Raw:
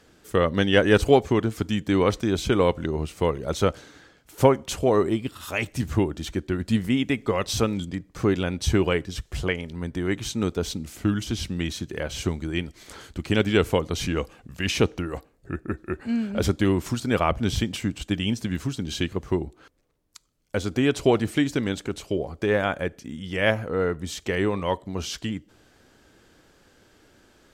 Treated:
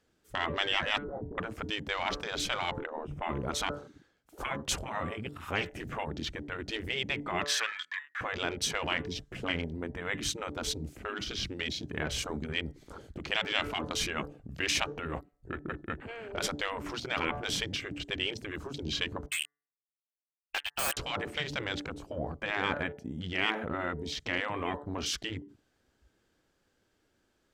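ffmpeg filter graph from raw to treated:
-filter_complex "[0:a]asettb=1/sr,asplit=3[s0][s1][s2];[s0]atrim=end=0.984[s3];[s1]atrim=start=0.98:end=1.38,asetpts=PTS-STARTPTS,afade=t=in:d=0.004:c=qsin,afade=t=out:st=0.396:d=0.004:c=qsin,agate=range=0.0224:threshold=0.0398:ratio=3:release=100:detection=peak,lowpass=f=200:t=q:w=1.7,asplit=2[s4][s5];[s5]adelay=25,volume=0.708[s6];[s4][s6]amix=inputs=2:normalize=0,atrim=end_sample=17640[s7];[s2]atrim=start=1.376[s8];[s3][s7]acrossfade=d=0.004:c1=hsin:c2=qsin[s9];[s9][s8]acrossfade=d=0.004:c1=qsin:c2=hsin,asettb=1/sr,asplit=3[s10][s11][s12];[s10]atrim=end=2.794[s13];[s11]atrim=start=2.79:end=3.29,asetpts=PTS-STARTPTS,afade=t=in:d=0.004:c=qsin,afade=t=out:st=0.496:d=0.004:c=qsin,asuperstop=centerf=4300:order=4:qfactor=3.7,bass=f=250:g=12,treble=f=4000:g=-14[s14];[s12]atrim=start=3.286[s15];[s13][s14]acrossfade=d=0.004:c1=hsin:c2=qsin[s16];[s16][s15]acrossfade=d=0.004:c1=qsin:c2=hsin,asettb=1/sr,asplit=3[s17][s18][s19];[s17]atrim=end=7.454[s20];[s18]atrim=start=7.45:end=8.21,asetpts=PTS-STARTPTS,afade=t=in:d=0.004:c=qsin,afade=t=out:st=0.756:d=0.004:c=qsin,highpass=f=1700:t=q:w=15,highshelf=f=6600:g=-6[s21];[s19]atrim=start=8.206[s22];[s20][s21]acrossfade=d=0.004:c1=hsin:c2=qsin[s23];[s23][s22]acrossfade=d=0.004:c1=qsin:c2=hsin,asettb=1/sr,asplit=3[s24][s25][s26];[s24]atrim=end=19.264[s27];[s25]atrim=start=19.26:end=20.97,asetpts=PTS-STARTPTS,afade=t=in:d=0.004:c=qsin,afade=t=out:st=1.706:d=0.004:c=qsin,lowpass=f=2600:t=q:w=0.5098,lowpass=f=2600:t=q:w=0.6013,lowpass=f=2600:t=q:w=0.9,lowpass=f=2600:t=q:w=2.563,afreqshift=-3100,acrusher=bits=3:mix=0:aa=0.5[s28];[s26]atrim=start=20.966[s29];[s27][s28]acrossfade=d=0.004:c1=hsin:c2=qsin[s30];[s30][s29]acrossfade=d=0.004:c1=qsin:c2=hsin,bandreject=f=145.2:t=h:w=4,bandreject=f=290.4:t=h:w=4,bandreject=f=435.6:t=h:w=4,bandreject=f=580.8:t=h:w=4,bandreject=f=726:t=h:w=4,bandreject=f=871.2:t=h:w=4,bandreject=f=1016.4:t=h:w=4,bandreject=f=1161.6:t=h:w=4,bandreject=f=1306.8:t=h:w=4,bandreject=f=1452:t=h:w=4,bandreject=f=1597.2:t=h:w=4,bandreject=f=1742.4:t=h:w=4,bandreject=f=1887.6:t=h:w=4,bandreject=f=2032.8:t=h:w=4,afftfilt=real='re*lt(hypot(re,im),0.178)':imag='im*lt(hypot(re,im),0.178)':win_size=1024:overlap=0.75,afwtdn=0.00794"

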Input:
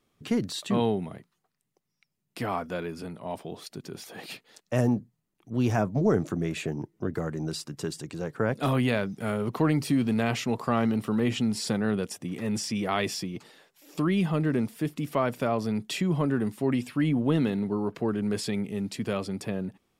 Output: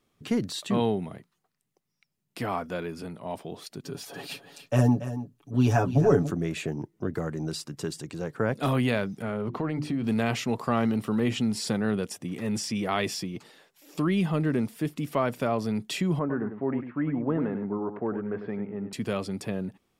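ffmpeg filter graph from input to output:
-filter_complex "[0:a]asettb=1/sr,asplit=3[s0][s1][s2];[s0]atrim=end=3.844[s3];[s1]atrim=start=3.84:end=6.31,asetpts=PTS-STARTPTS,afade=t=in:d=0.004:c=qsin,afade=t=out:st=2.466:d=0.004:c=qsin,equalizer=f=2100:w=6.1:g=-7,aecho=1:1:7.1:0.91,atrim=end_sample=108927,aecho=1:1:283:0.251,atrim=end_sample=108927[s4];[s2]atrim=start=6.306[s5];[s3][s4]acrossfade=d=0.004:c1=hsin:c2=qsin[s6];[s6][s5]acrossfade=d=0.004:c1=qsin:c2=hsin,asettb=1/sr,asplit=3[s7][s8][s9];[s7]atrim=end=9.224[s10];[s8]atrim=start=9.22:end=10.04,asetpts=PTS-STARTPTS,afade=t=in:d=0.004:c=qsin,afade=t=out:st=0.816:d=0.004:c=qsin,aemphasis=mode=reproduction:type=75fm,bandreject=f=50:t=h:w=6,bandreject=f=100:t=h:w=6,bandreject=f=150:t=h:w=6,bandreject=f=200:t=h:w=6,bandreject=f=250:t=h:w=6,bandreject=f=300:t=h:w=6,bandreject=f=350:t=h:w=6,acompressor=threshold=0.0501:ratio=3:attack=3.2:release=140:knee=1:detection=peak[s11];[s9]atrim=start=10.036[s12];[s10][s11]acrossfade=d=0.004:c1=hsin:c2=qsin[s13];[s13][s12]acrossfade=d=0.004:c1=qsin:c2=hsin,asettb=1/sr,asplit=3[s14][s15][s16];[s14]atrim=end=16.194[s17];[s15]atrim=start=16.19:end=18.93,asetpts=PTS-STARTPTS,afade=t=in:d=0.004:c=qsin,afade=t=out:st=2.736:d=0.004:c=qsin,lowpass=f=1700:w=0.5412,lowpass=f=1700:w=1.3066,lowshelf=f=170:g=-10.5,aecho=1:1:99:0.355,atrim=end_sample=120834[s18];[s16]atrim=start=18.926[s19];[s17][s18]acrossfade=d=0.004:c1=hsin:c2=qsin[s20];[s20][s19]acrossfade=d=0.004:c1=qsin:c2=hsin"

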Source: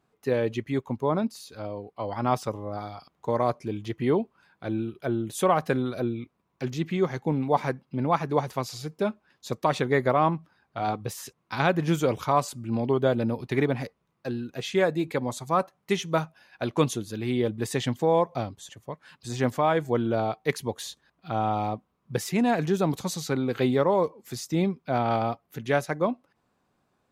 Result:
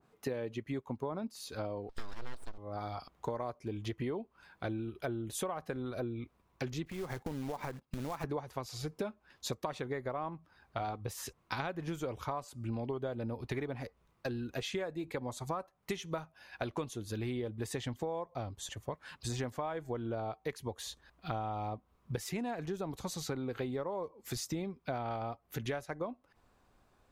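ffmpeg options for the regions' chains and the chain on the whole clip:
-filter_complex "[0:a]asettb=1/sr,asplit=3[s0][s1][s2];[s0]atrim=end=1.894[s3];[s1]atrim=start=1.89:end=2.58,asetpts=PTS-STARTPTS,afade=t=in:d=0.004:c=qsin,afade=t=out:st=0.686:d=0.004:c=qsin,lowpass=f=4200:t=q:w=11,aeval=exprs='abs(val(0))':c=same[s4];[s2]atrim=start=2.576[s5];[s3][s4]acrossfade=d=0.004:c1=hsin:c2=qsin[s6];[s6][s5]acrossfade=d=0.004:c1=qsin:c2=hsin,asettb=1/sr,asplit=3[s7][s8][s9];[s7]atrim=end=6.854[s10];[s8]atrim=start=6.85:end=8.24,asetpts=PTS-STARTPTS,afade=t=in:d=0.004:c=qsin,afade=t=out:st=1.386:d=0.004:c=qsin,agate=range=0.2:threshold=0.00562:ratio=16:release=100:detection=peak,acompressor=threshold=0.0224:ratio=8:attack=3.2:release=140:knee=1:detection=peak,acrusher=bits=3:mode=log:mix=0:aa=0.000001[s11];[s9]atrim=start=8.236[s12];[s10][s11]acrossfade=d=0.004:c1=hsin:c2=qsin[s13];[s13][s12]acrossfade=d=0.004:c1=qsin:c2=hsin,asubboost=boost=7:cutoff=58,acompressor=threshold=0.0141:ratio=12,adynamicequalizer=threshold=0.00178:dfrequency=1800:dqfactor=0.7:tfrequency=1800:tqfactor=0.7:attack=5:release=100:ratio=0.375:range=2.5:mode=cutabove:tftype=highshelf,volume=1.41"

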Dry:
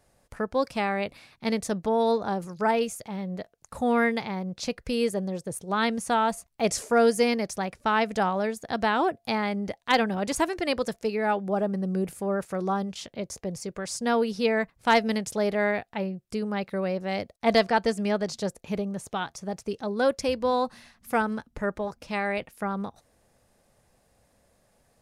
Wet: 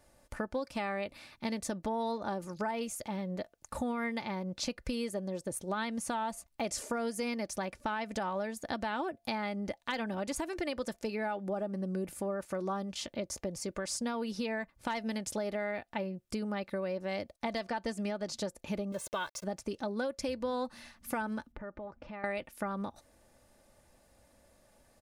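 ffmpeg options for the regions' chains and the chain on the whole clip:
-filter_complex "[0:a]asettb=1/sr,asplit=3[s0][s1][s2];[s0]atrim=end=18.924[s3];[s1]atrim=start=18.92:end=19.44,asetpts=PTS-STARTPTS,afade=t=in:d=0.004:c=qsin,afade=t=out:st=0.516:d=0.004:c=qsin,lowshelf=f=120:g=-11.5,aeval=exprs='val(0)*gte(abs(val(0)),0.00473)':c=same,aecho=1:1:1.9:0.68,atrim=end_sample=22932[s4];[s2]atrim=start=19.436[s5];[s3][s4]acrossfade=d=0.004:c1=hsin:c2=qsin[s6];[s6][s5]acrossfade=d=0.004:c1=qsin:c2=hsin,asettb=1/sr,asplit=3[s7][s8][s9];[s7]atrim=end=21.524[s10];[s8]atrim=start=21.52:end=22.24,asetpts=PTS-STARTPTS,afade=t=in:d=0.004:c=qsin,afade=t=out:st=0.716:d=0.004:c=qsin,lowpass=1900,acompressor=threshold=0.00708:ratio=4:attack=3.2:release=140:knee=1:detection=peak[s11];[s9]atrim=start=22.236[s12];[s10][s11]acrossfade=d=0.004:c1=hsin:c2=qsin[s13];[s13][s12]acrossfade=d=0.004:c1=qsin:c2=hsin,aecho=1:1:3.4:0.4,alimiter=limit=0.15:level=0:latency=1:release=128,acompressor=threshold=0.0224:ratio=4"

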